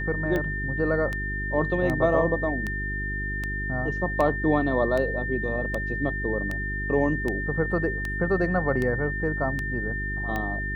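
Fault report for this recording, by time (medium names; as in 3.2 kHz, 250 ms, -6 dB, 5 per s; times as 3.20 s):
hum 50 Hz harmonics 8 -32 dBFS
tick 78 rpm -16 dBFS
whine 1.8 kHz -30 dBFS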